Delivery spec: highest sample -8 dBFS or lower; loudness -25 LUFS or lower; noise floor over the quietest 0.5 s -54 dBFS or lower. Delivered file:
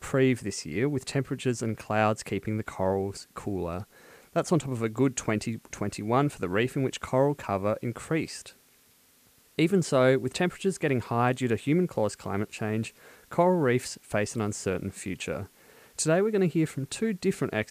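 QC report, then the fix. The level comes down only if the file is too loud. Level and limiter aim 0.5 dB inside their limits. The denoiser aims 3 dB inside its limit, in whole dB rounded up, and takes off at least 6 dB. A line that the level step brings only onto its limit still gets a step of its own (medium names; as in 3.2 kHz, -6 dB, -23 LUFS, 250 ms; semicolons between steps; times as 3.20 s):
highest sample -10.0 dBFS: pass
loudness -28.5 LUFS: pass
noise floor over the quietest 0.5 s -61 dBFS: pass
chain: none needed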